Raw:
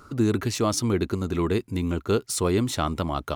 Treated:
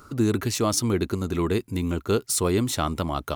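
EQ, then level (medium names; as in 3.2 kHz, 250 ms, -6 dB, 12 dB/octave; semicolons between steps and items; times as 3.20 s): treble shelf 8.3 kHz +8 dB; 0.0 dB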